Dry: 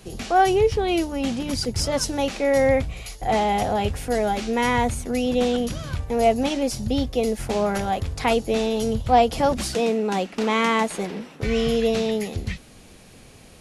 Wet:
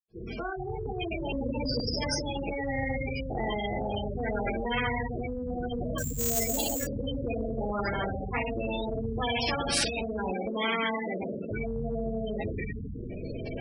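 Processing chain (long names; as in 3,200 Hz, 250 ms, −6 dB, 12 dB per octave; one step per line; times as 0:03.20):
fade in at the beginning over 1.46 s
convolution reverb RT60 0.80 s, pre-delay 77 ms
amplitude tremolo 0.66 Hz, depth 65%
0:09.21–0:10.01: tilt shelving filter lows −6 dB, about 780 Hz
gate on every frequency bin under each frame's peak −20 dB strong
in parallel at 0 dB: downward compressor, threshold −33 dBFS, peak gain reduction 16 dB
0:01.32–0:01.80: on the sum: EQ curve with evenly spaced ripples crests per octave 1, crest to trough 18 dB
0:05.98–0:06.87: sample-rate reduction 7,400 Hz, jitter 0%
every bin compressed towards the loudest bin 4 to 1
level −5.5 dB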